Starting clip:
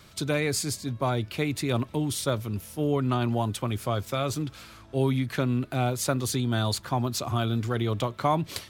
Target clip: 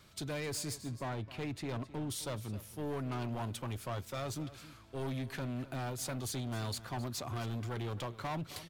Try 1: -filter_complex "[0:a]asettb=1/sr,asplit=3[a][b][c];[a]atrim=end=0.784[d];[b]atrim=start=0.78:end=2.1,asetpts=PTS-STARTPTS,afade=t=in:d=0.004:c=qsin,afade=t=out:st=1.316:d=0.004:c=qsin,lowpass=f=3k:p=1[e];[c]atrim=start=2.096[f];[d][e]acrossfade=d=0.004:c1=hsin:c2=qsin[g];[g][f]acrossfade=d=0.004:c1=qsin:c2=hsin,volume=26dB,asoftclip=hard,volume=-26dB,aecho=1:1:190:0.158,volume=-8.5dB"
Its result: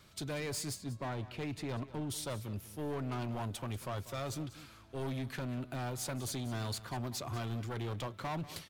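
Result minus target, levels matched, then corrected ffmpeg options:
echo 73 ms early
-filter_complex "[0:a]asettb=1/sr,asplit=3[a][b][c];[a]atrim=end=0.784[d];[b]atrim=start=0.78:end=2.1,asetpts=PTS-STARTPTS,afade=t=in:d=0.004:c=qsin,afade=t=out:st=1.316:d=0.004:c=qsin,lowpass=f=3k:p=1[e];[c]atrim=start=2.096[f];[d][e]acrossfade=d=0.004:c1=hsin:c2=qsin[g];[g][f]acrossfade=d=0.004:c1=qsin:c2=hsin,volume=26dB,asoftclip=hard,volume=-26dB,aecho=1:1:263:0.158,volume=-8.5dB"

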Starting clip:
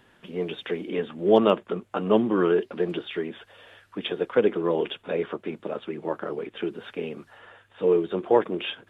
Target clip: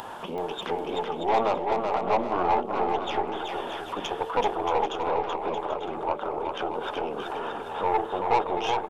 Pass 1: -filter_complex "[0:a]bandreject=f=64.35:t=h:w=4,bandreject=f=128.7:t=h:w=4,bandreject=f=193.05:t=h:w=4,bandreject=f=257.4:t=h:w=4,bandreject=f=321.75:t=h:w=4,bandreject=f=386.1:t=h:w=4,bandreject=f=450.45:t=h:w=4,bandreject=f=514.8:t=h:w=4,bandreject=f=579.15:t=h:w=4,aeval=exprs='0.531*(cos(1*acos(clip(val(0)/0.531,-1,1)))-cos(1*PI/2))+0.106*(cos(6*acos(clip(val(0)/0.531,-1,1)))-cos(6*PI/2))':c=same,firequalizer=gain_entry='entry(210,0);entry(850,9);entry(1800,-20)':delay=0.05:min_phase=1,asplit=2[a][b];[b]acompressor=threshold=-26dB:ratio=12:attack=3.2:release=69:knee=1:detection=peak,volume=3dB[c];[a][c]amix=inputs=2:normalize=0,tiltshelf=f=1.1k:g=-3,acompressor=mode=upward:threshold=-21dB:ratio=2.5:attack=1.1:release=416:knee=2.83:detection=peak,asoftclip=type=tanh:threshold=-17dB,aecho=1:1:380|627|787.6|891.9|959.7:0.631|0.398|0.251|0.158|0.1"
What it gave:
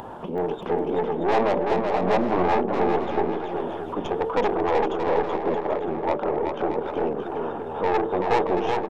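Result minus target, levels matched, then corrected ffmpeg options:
compressor: peak gain reduction -10 dB; 1000 Hz band -3.0 dB
-filter_complex "[0:a]bandreject=f=64.35:t=h:w=4,bandreject=f=128.7:t=h:w=4,bandreject=f=193.05:t=h:w=4,bandreject=f=257.4:t=h:w=4,bandreject=f=321.75:t=h:w=4,bandreject=f=386.1:t=h:w=4,bandreject=f=450.45:t=h:w=4,bandreject=f=514.8:t=h:w=4,bandreject=f=579.15:t=h:w=4,aeval=exprs='0.531*(cos(1*acos(clip(val(0)/0.531,-1,1)))-cos(1*PI/2))+0.106*(cos(6*acos(clip(val(0)/0.531,-1,1)))-cos(6*PI/2))':c=same,firequalizer=gain_entry='entry(210,0);entry(850,9);entry(1800,-20)':delay=0.05:min_phase=1,asplit=2[a][b];[b]acompressor=threshold=-37dB:ratio=12:attack=3.2:release=69:knee=1:detection=peak,volume=3dB[c];[a][c]amix=inputs=2:normalize=0,tiltshelf=f=1.1k:g=-13.5,acompressor=mode=upward:threshold=-21dB:ratio=2.5:attack=1.1:release=416:knee=2.83:detection=peak,asoftclip=type=tanh:threshold=-17dB,aecho=1:1:380|627|787.6|891.9|959.7:0.631|0.398|0.251|0.158|0.1"

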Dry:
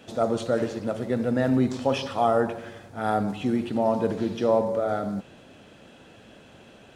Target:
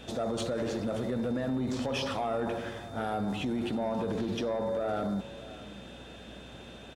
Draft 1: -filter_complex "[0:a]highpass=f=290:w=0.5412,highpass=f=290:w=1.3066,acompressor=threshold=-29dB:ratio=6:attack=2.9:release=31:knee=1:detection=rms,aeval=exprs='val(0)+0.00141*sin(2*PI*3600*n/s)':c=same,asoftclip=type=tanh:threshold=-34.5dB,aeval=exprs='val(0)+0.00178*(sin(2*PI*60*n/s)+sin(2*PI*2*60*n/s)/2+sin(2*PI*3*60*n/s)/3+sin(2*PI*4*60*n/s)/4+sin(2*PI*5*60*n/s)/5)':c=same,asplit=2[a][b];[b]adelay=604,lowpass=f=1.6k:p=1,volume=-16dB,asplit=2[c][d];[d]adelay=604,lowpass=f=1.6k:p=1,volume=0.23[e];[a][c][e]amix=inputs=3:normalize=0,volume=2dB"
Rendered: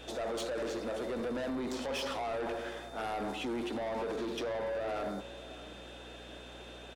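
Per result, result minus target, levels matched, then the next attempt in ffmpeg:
soft clip: distortion +10 dB; 250 Hz band -2.5 dB
-filter_complex "[0:a]highpass=f=290:w=0.5412,highpass=f=290:w=1.3066,acompressor=threshold=-29dB:ratio=6:attack=2.9:release=31:knee=1:detection=rms,aeval=exprs='val(0)+0.00141*sin(2*PI*3600*n/s)':c=same,asoftclip=type=tanh:threshold=-25.5dB,aeval=exprs='val(0)+0.00178*(sin(2*PI*60*n/s)+sin(2*PI*2*60*n/s)/2+sin(2*PI*3*60*n/s)/3+sin(2*PI*4*60*n/s)/4+sin(2*PI*5*60*n/s)/5)':c=same,asplit=2[a][b];[b]adelay=604,lowpass=f=1.6k:p=1,volume=-16dB,asplit=2[c][d];[d]adelay=604,lowpass=f=1.6k:p=1,volume=0.23[e];[a][c][e]amix=inputs=3:normalize=0,volume=2dB"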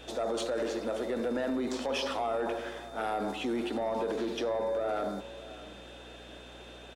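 250 Hz band -3.0 dB
-filter_complex "[0:a]acompressor=threshold=-29dB:ratio=6:attack=2.9:release=31:knee=1:detection=rms,aeval=exprs='val(0)+0.00141*sin(2*PI*3600*n/s)':c=same,asoftclip=type=tanh:threshold=-25.5dB,aeval=exprs='val(0)+0.00178*(sin(2*PI*60*n/s)+sin(2*PI*2*60*n/s)/2+sin(2*PI*3*60*n/s)/3+sin(2*PI*4*60*n/s)/4+sin(2*PI*5*60*n/s)/5)':c=same,asplit=2[a][b];[b]adelay=604,lowpass=f=1.6k:p=1,volume=-16dB,asplit=2[c][d];[d]adelay=604,lowpass=f=1.6k:p=1,volume=0.23[e];[a][c][e]amix=inputs=3:normalize=0,volume=2dB"

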